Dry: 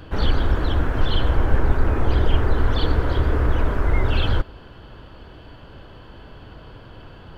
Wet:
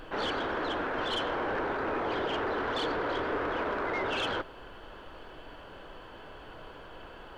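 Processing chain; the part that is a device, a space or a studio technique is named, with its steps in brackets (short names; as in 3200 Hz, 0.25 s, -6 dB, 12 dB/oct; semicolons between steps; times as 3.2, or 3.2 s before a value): aircraft cabin announcement (BPF 390–3400 Hz; soft clip -24.5 dBFS, distortion -17 dB; brown noise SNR 17 dB)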